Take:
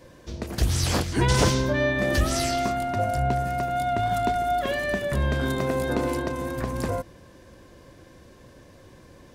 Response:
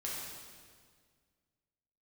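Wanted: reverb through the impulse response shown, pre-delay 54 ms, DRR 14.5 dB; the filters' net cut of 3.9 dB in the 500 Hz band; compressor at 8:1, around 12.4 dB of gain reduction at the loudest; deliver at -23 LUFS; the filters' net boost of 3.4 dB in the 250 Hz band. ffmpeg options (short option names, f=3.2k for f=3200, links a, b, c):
-filter_complex "[0:a]equalizer=f=250:t=o:g=6,equalizer=f=500:t=o:g=-7,acompressor=threshold=-29dB:ratio=8,asplit=2[a][b];[1:a]atrim=start_sample=2205,adelay=54[c];[b][c]afir=irnorm=-1:irlink=0,volume=-16.5dB[d];[a][d]amix=inputs=2:normalize=0,volume=10dB"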